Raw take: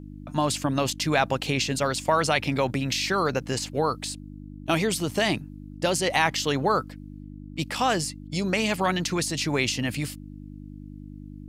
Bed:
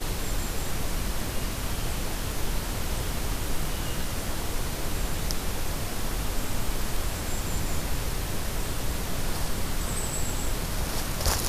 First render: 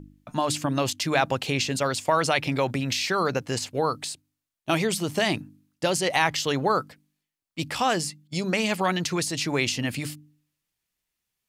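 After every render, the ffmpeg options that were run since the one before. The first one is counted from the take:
-af "bandreject=f=50:t=h:w=4,bandreject=f=100:t=h:w=4,bandreject=f=150:t=h:w=4,bandreject=f=200:t=h:w=4,bandreject=f=250:t=h:w=4,bandreject=f=300:t=h:w=4"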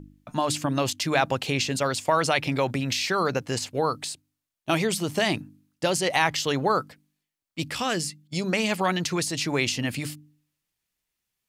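-filter_complex "[0:a]asettb=1/sr,asplit=3[a][b][c];[a]atrim=end=7.704[d];[b]atrim=start=7.7:end=8.24,asetpts=PTS-STARTPTS,afade=t=in:d=0.004:c=qsin,afade=t=out:st=0.536:d=0.004:c=qsin,equalizer=f=820:w=1.5:g=-7.5[e];[c]atrim=start=8.236[f];[d][e]acrossfade=d=0.004:c1=hsin:c2=qsin[g];[g][f]acrossfade=d=0.004:c1=qsin:c2=hsin"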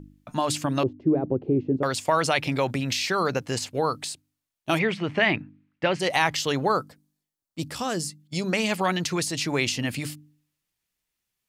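-filter_complex "[0:a]asettb=1/sr,asplit=3[a][b][c];[a]atrim=end=0.834[d];[b]atrim=start=0.83:end=1.83,asetpts=PTS-STARTPTS,afade=t=in:d=0.004:c=qsin,afade=t=out:st=0.996:d=0.004:c=qsin,lowpass=f=360:t=q:w=3.6[e];[c]atrim=start=1.826[f];[d][e]acrossfade=d=0.004:c1=hsin:c2=qsin[g];[g][f]acrossfade=d=0.004:c1=qsin:c2=hsin,asplit=3[h][i][j];[h]afade=t=out:st=4.78:d=0.02[k];[i]lowpass=f=2.2k:t=q:w=2.3,afade=t=in:st=4.78:d=0.02,afade=t=out:st=5.99:d=0.02[l];[j]afade=t=in:st=5.99:d=0.02[m];[k][l][m]amix=inputs=3:normalize=0,asettb=1/sr,asplit=3[n][o][p];[n]atrim=end=6.774[q];[o]atrim=start=6.77:end=8.2,asetpts=PTS-STARTPTS,afade=t=in:d=0.004:c=qsin,afade=t=out:st=1.426:d=0.004:c=qsin,equalizer=f=2.4k:t=o:w=1.3:g=-9[r];[p]atrim=start=8.196[s];[q][r]acrossfade=d=0.004:c1=hsin:c2=qsin[t];[t][s]acrossfade=d=0.004:c1=qsin:c2=hsin"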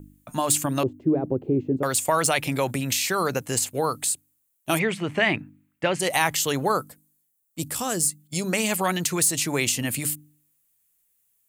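-filter_complex "[0:a]acrossover=split=730|7000[a][b][c];[c]asoftclip=type=hard:threshold=-30.5dB[d];[a][b][d]amix=inputs=3:normalize=0,aexciter=amount=4.4:drive=7:freq=7.1k"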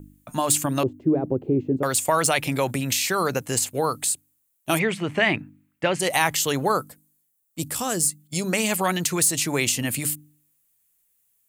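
-af "volume=1dB"

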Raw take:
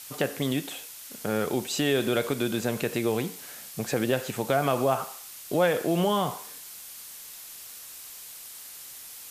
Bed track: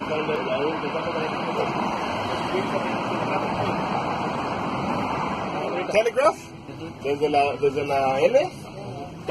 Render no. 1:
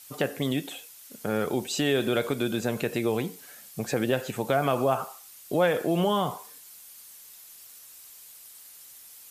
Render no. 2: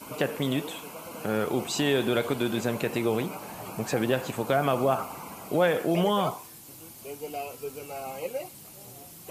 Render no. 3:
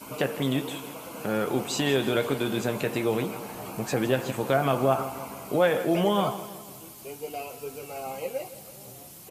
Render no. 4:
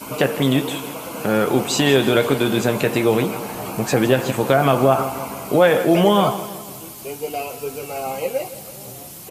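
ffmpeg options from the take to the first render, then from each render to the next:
-af "afftdn=nr=8:nf=-44"
-filter_complex "[1:a]volume=-15.5dB[a];[0:a][a]amix=inputs=2:normalize=0"
-filter_complex "[0:a]asplit=2[a][b];[b]adelay=15,volume=-10.5dB[c];[a][c]amix=inputs=2:normalize=0,aecho=1:1:164|328|492|656|820:0.178|0.0978|0.0538|0.0296|0.0163"
-af "volume=9dB,alimiter=limit=-3dB:level=0:latency=1"

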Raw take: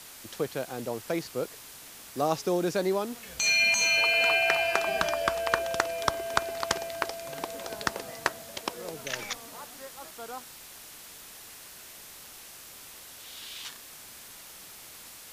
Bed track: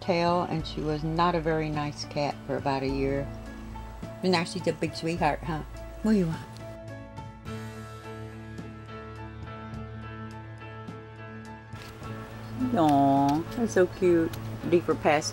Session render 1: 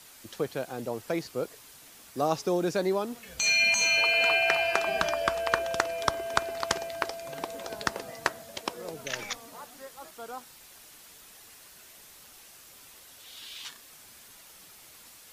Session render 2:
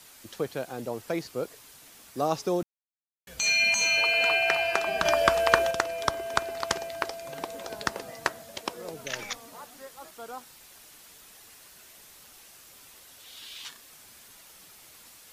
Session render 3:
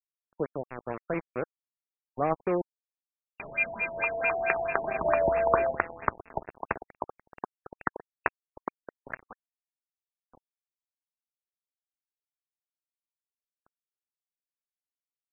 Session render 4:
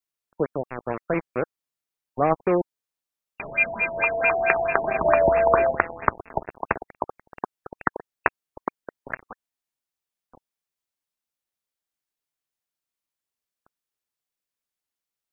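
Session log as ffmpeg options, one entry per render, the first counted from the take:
-af "afftdn=nr=6:nf=-48"
-filter_complex "[0:a]asettb=1/sr,asplit=3[a][b][c];[a]atrim=end=5.054[d];[b]atrim=start=5.05:end=5.71,asetpts=PTS-STARTPTS,afade=t=in:d=0.004:c=qsin,afade=t=out:st=0.656:d=0.004:c=qsin,acontrast=57[e];[c]atrim=start=5.706[f];[d][e]acrossfade=d=0.004:c1=hsin:c2=qsin[g];[g][f]acrossfade=d=0.004:c1=qsin:c2=hsin,asplit=3[h][i][j];[h]atrim=end=2.63,asetpts=PTS-STARTPTS,afade=t=out:st=2.626:d=0.004:c=hsin[k];[i]atrim=start=2.63:end=3.27,asetpts=PTS-STARTPTS,volume=0[l];[j]atrim=start=3.27,asetpts=PTS-STARTPTS,afade=t=in:d=0.004:c=hsin[m];[k][l][m]concat=n=3:v=0:a=1"
-af "aeval=exprs='val(0)*gte(abs(val(0)),0.0355)':c=same,afftfilt=real='re*lt(b*sr/1024,910*pow(2800/910,0.5+0.5*sin(2*PI*4.5*pts/sr)))':imag='im*lt(b*sr/1024,910*pow(2800/910,0.5+0.5*sin(2*PI*4.5*pts/sr)))':win_size=1024:overlap=0.75"
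-af "volume=6.5dB,alimiter=limit=-2dB:level=0:latency=1"

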